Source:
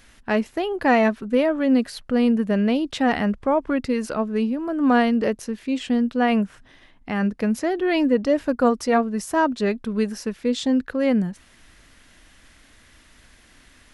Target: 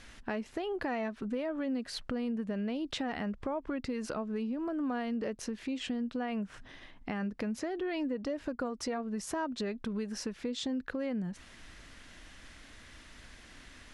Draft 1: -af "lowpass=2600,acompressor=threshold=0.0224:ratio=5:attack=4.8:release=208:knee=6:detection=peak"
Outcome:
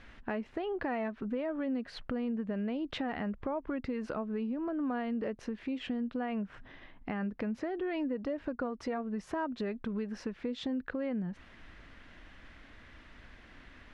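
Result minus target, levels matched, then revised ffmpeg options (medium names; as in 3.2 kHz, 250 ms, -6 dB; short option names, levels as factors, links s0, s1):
8 kHz band -15.0 dB
-af "lowpass=8100,acompressor=threshold=0.0224:ratio=5:attack=4.8:release=208:knee=6:detection=peak"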